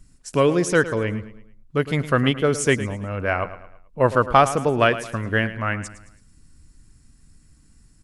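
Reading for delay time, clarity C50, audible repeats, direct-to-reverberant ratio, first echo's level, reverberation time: 0.109 s, none, 3, none, -14.0 dB, none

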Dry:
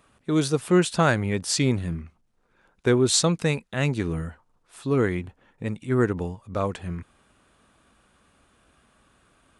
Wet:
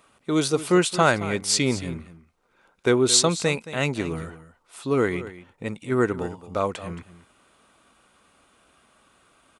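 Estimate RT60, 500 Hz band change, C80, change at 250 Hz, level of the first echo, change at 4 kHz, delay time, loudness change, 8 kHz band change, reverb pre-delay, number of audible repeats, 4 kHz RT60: none, +1.5 dB, none, -0.5 dB, -15.0 dB, +3.5 dB, 0.222 s, +1.5 dB, +3.5 dB, none, 1, none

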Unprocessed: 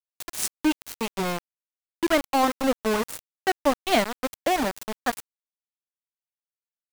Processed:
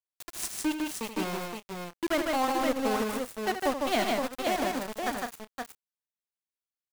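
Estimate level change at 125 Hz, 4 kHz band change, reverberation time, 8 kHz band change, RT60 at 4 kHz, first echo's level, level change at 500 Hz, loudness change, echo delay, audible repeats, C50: -4.0 dB, -4.0 dB, none, -4.0 dB, none, -9.5 dB, -4.0 dB, -4.5 dB, 79 ms, 4, none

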